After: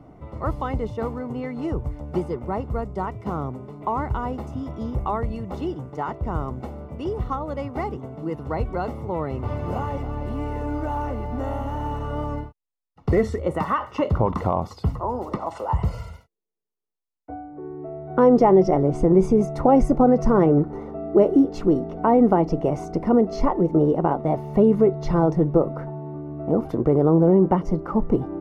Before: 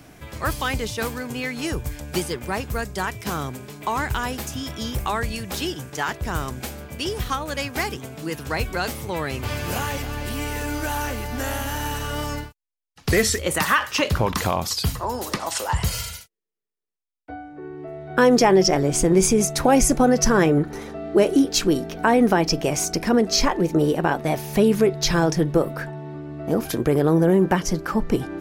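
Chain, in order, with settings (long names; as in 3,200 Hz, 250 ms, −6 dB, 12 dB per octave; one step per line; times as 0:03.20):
Savitzky-Golay smoothing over 65 samples
level +1 dB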